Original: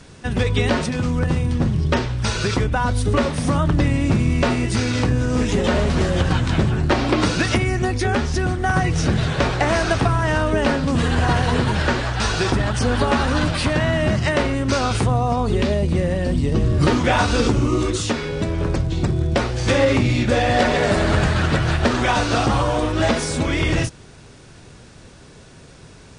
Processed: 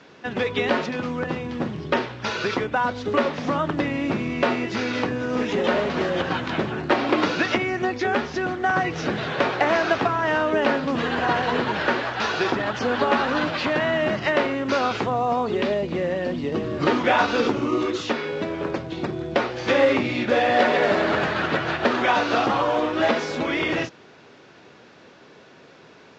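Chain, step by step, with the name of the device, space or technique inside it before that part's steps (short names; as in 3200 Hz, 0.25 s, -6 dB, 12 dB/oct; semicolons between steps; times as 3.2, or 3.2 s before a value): telephone (BPF 290–3400 Hz; µ-law 128 kbps 16000 Hz)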